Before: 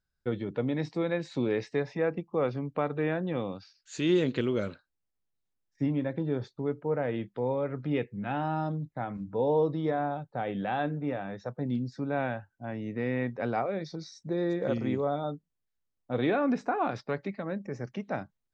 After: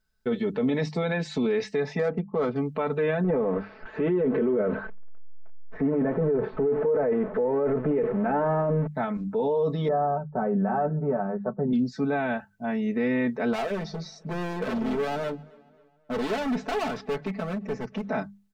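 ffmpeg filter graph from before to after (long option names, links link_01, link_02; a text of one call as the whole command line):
ffmpeg -i in.wav -filter_complex "[0:a]asettb=1/sr,asplit=3[link_01][link_02][link_03];[link_01]atrim=end=1.994[link_04];[link_02]atrim=start=1.99:end=2.56,asetpts=PTS-STARTPTS,afade=type=in:duration=0.004:curve=qsin,afade=type=out:start_time=0.566:duration=0.004:curve=qsin,lowpass=4000,adynamicsmooth=sensitivity=4:basefreq=1700,bandreject=frequency=2600:width=17[link_05];[link_03]atrim=start=2.556[link_06];[link_04][link_05]acrossfade=duration=0.004:curve1=hsin:curve2=qsin[link_07];[link_07][link_06]acrossfade=duration=0.004:curve1=qsin:curve2=hsin,asettb=1/sr,asplit=3[link_08][link_09][link_10];[link_08]atrim=end=3.244[link_11];[link_09]atrim=start=3.24:end=8.87,asetpts=PTS-STARTPTS,afade=type=in:duration=0.004:curve=qsin,afade=type=out:start_time=5.626:duration=0.004:curve=qsin,aeval=exprs='val(0)+0.5*0.0126*sgn(val(0))':channel_layout=same,lowpass=frequency=1800:width=0.5412,lowpass=frequency=1800:width=1.3066,equalizer=frequency=480:width=1.3:gain=10[link_12];[link_10]atrim=start=8.866[link_13];[link_11][link_12]acrossfade=duration=0.004:curve1=hsin:curve2=qsin[link_14];[link_14][link_13]acrossfade=duration=0.004:curve1=qsin:curve2=hsin,asettb=1/sr,asplit=3[link_15][link_16][link_17];[link_15]atrim=end=9.884[link_18];[link_16]atrim=start=9.88:end=11.73,asetpts=PTS-STARTPTS,afade=type=in:duration=0.004:curve=qsin,afade=type=out:start_time=1.846:duration=0.004:curve=qsin,lowpass=frequency=1200:width=0.5412,lowpass=frequency=1200:width=1.3066,aecho=1:1:5.3:0.68,atrim=end_sample=81585[link_19];[link_17]atrim=start=11.726[link_20];[link_18][link_19]acrossfade=duration=0.004:curve1=hsin:curve2=qsin[link_21];[link_21][link_20]acrossfade=duration=0.004:curve1=qsin:curve2=hsin,asettb=1/sr,asplit=3[link_22][link_23][link_24];[link_22]atrim=end=13.534[link_25];[link_23]atrim=start=13.53:end=18.1,asetpts=PTS-STARTPTS,afade=type=in:duration=0.004:curve=qsin,afade=type=out:start_time=4.566:duration=0.004:curve=qsin,highshelf=frequency=5000:gain=-10,asoftclip=type=hard:threshold=-34dB,asplit=2[link_26][link_27];[link_27]adelay=268,lowpass=frequency=4700:poles=1,volume=-24dB,asplit=2[link_28][link_29];[link_29]adelay=268,lowpass=frequency=4700:poles=1,volume=0.5,asplit=2[link_30][link_31];[link_31]adelay=268,lowpass=frequency=4700:poles=1,volume=0.5[link_32];[link_26][link_28][link_30][link_32]amix=inputs=4:normalize=0,atrim=end_sample=201537[link_33];[link_24]atrim=start=18.096[link_34];[link_25][link_33]acrossfade=duration=0.004:curve1=hsin:curve2=qsin[link_35];[link_35][link_34]acrossfade=duration=0.004:curve1=qsin:curve2=hsin,bandreject=frequency=50:width_type=h:width=6,bandreject=frequency=100:width_type=h:width=6,bandreject=frequency=150:width_type=h:width=6,bandreject=frequency=200:width_type=h:width=6,aecho=1:1:4.6:0.95,alimiter=limit=-23.5dB:level=0:latency=1:release=25,volume=5.5dB" out.wav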